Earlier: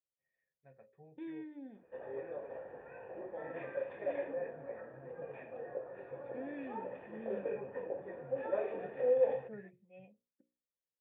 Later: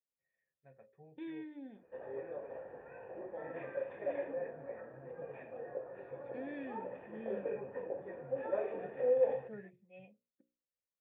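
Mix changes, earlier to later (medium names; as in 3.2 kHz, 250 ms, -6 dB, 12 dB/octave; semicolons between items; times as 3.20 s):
second voice: add treble shelf 3.3 kHz +11.5 dB; background: add distance through air 160 m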